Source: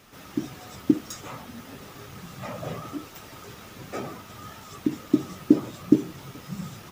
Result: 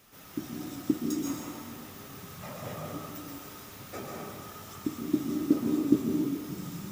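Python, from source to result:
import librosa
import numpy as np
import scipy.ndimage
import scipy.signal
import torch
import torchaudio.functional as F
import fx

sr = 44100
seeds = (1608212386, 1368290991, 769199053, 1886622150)

y = fx.high_shelf(x, sr, hz=8400.0, db=10.5)
y = fx.rev_plate(y, sr, seeds[0], rt60_s=1.8, hf_ratio=0.8, predelay_ms=110, drr_db=-1.0)
y = F.gain(torch.from_numpy(y), -7.5).numpy()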